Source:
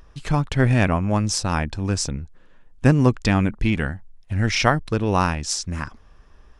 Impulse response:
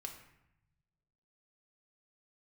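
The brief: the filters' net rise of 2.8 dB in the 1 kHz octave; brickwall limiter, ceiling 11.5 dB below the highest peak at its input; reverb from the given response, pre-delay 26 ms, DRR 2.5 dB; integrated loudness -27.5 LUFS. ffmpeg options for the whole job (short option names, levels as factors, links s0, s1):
-filter_complex "[0:a]equalizer=f=1000:t=o:g=3.5,alimiter=limit=0.299:level=0:latency=1,asplit=2[s0][s1];[1:a]atrim=start_sample=2205,adelay=26[s2];[s1][s2]afir=irnorm=-1:irlink=0,volume=1.06[s3];[s0][s3]amix=inputs=2:normalize=0,volume=0.501"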